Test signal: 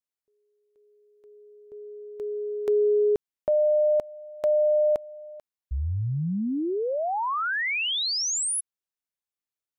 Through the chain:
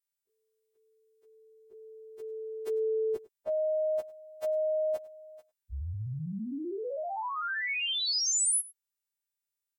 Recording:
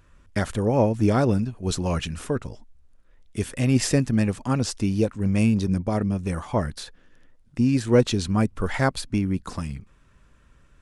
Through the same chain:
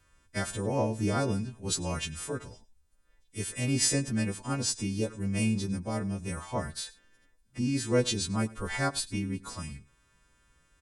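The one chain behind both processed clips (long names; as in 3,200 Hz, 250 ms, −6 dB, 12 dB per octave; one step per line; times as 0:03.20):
every partial snapped to a pitch grid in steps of 2 semitones
single-tap delay 100 ms −20.5 dB
level −8 dB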